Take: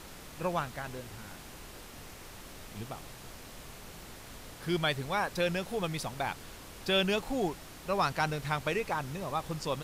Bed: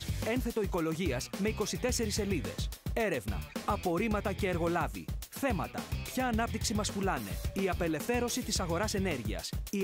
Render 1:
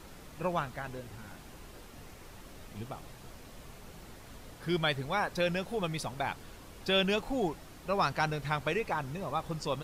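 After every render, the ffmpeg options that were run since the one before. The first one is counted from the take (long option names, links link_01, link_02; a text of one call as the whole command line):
ffmpeg -i in.wav -af "afftdn=noise_reduction=6:noise_floor=-49" out.wav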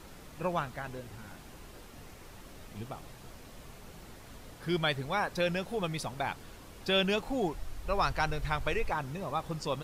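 ffmpeg -i in.wav -filter_complex "[0:a]asplit=3[link_01][link_02][link_03];[link_01]afade=type=out:start_time=7.54:duration=0.02[link_04];[link_02]asubboost=boost=9:cutoff=60,afade=type=in:start_time=7.54:duration=0.02,afade=type=out:start_time=8.91:duration=0.02[link_05];[link_03]afade=type=in:start_time=8.91:duration=0.02[link_06];[link_04][link_05][link_06]amix=inputs=3:normalize=0" out.wav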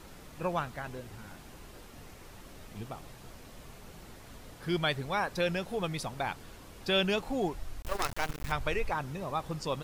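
ffmpeg -i in.wav -filter_complex "[0:a]asettb=1/sr,asplit=3[link_01][link_02][link_03];[link_01]atrim=end=7.824[link_04];[link_02]atrim=start=7.82:end=8.52,asetpts=PTS-STARTPTS,afade=type=in:duration=0.004:curve=qsin,afade=type=out:start_time=0.696:duration=0.004:curve=qsin,acrusher=bits=4:dc=4:mix=0:aa=0.000001[link_05];[link_03]atrim=start=8.516[link_06];[link_04][link_05]acrossfade=duration=0.004:curve1=hsin:curve2=qsin[link_07];[link_07][link_06]acrossfade=duration=0.004:curve1=qsin:curve2=hsin" out.wav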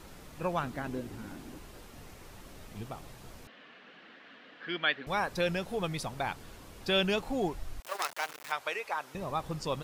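ffmpeg -i in.wav -filter_complex "[0:a]asettb=1/sr,asplit=3[link_01][link_02][link_03];[link_01]atrim=end=0.634[link_04];[link_02]atrim=start=0.63:end=1.59,asetpts=PTS-STARTPTS,afade=type=in:duration=0.004:curve=qsin,afade=type=out:start_time=0.956:duration=0.004:curve=qsin,equalizer=frequency=280:width=1.5:gain=11.5[link_05];[link_03]atrim=start=1.586[link_06];[link_04][link_05]acrossfade=duration=0.004:curve1=hsin:curve2=qsin[link_07];[link_07][link_06]acrossfade=duration=0.004:curve1=qsin:curve2=hsin,asettb=1/sr,asplit=3[link_08][link_09][link_10];[link_08]atrim=end=3.474[link_11];[link_09]atrim=start=3.47:end=5.07,asetpts=PTS-STARTPTS,afade=type=in:duration=0.004:curve=qsin,afade=type=out:start_time=1.596:duration=0.004:curve=qsin,highpass=frequency=250:width=0.5412,highpass=frequency=250:width=1.3066,equalizer=frequency=380:width_type=q:width=4:gain=-9,equalizer=frequency=610:width_type=q:width=4:gain=-4,equalizer=frequency=890:width_type=q:width=4:gain=-7,equalizer=frequency=1700:width_type=q:width=4:gain=8,equalizer=frequency=2900:width_type=q:width=4:gain=5,lowpass=frequency=3700:width=0.5412,lowpass=frequency=3700:width=1.3066[link_12];[link_10]atrim=start=5.066[link_13];[link_11][link_12]acrossfade=duration=0.004:curve1=hsin:curve2=qsin[link_14];[link_14][link_13]acrossfade=duration=0.004:curve1=qsin:curve2=hsin,asettb=1/sr,asplit=3[link_15][link_16][link_17];[link_15]atrim=end=7.804[link_18];[link_16]atrim=start=7.8:end=9.15,asetpts=PTS-STARTPTS,afade=type=in:duration=0.004:curve=qsin,afade=type=out:start_time=1.346:duration=0.004:curve=qsin,highpass=600[link_19];[link_17]atrim=start=9.146[link_20];[link_18][link_19]acrossfade=duration=0.004:curve1=hsin:curve2=qsin[link_21];[link_21][link_20]acrossfade=duration=0.004:curve1=qsin:curve2=hsin" out.wav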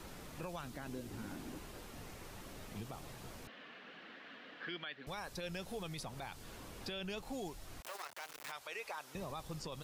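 ffmpeg -i in.wav -filter_complex "[0:a]acrossover=split=92|3300[link_01][link_02][link_03];[link_01]acompressor=threshold=-53dB:ratio=4[link_04];[link_02]acompressor=threshold=-42dB:ratio=4[link_05];[link_03]acompressor=threshold=-47dB:ratio=4[link_06];[link_04][link_05][link_06]amix=inputs=3:normalize=0,alimiter=level_in=10dB:limit=-24dB:level=0:latency=1:release=18,volume=-10dB" out.wav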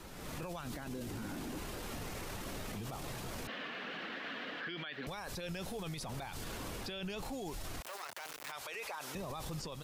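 ffmpeg -i in.wav -af "dynaudnorm=framelen=120:gausssize=5:maxgain=12dB,alimiter=level_in=10dB:limit=-24dB:level=0:latency=1:release=22,volume=-10dB" out.wav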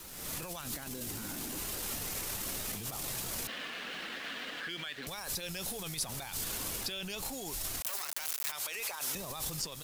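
ffmpeg -i in.wav -af "crystalizer=i=4:c=0,aeval=exprs='sgn(val(0))*max(abs(val(0))-0.00282,0)':channel_layout=same" out.wav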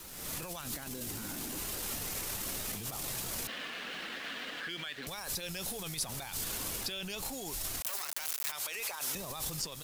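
ffmpeg -i in.wav -af anull out.wav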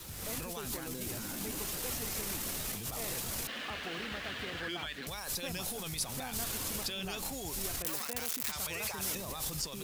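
ffmpeg -i in.wav -i bed.wav -filter_complex "[1:a]volume=-13.5dB[link_01];[0:a][link_01]amix=inputs=2:normalize=0" out.wav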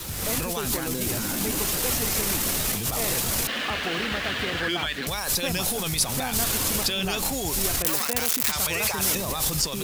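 ffmpeg -i in.wav -af "volume=12dB" out.wav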